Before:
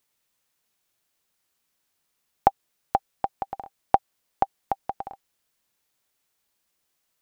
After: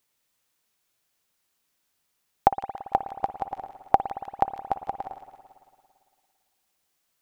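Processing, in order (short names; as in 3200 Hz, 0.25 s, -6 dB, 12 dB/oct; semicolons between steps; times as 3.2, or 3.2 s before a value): on a send: thin delay 0.155 s, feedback 59%, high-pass 2300 Hz, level -9.5 dB; on the sum: spring tank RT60 2.1 s, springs 56 ms, chirp 75 ms, DRR 9.5 dB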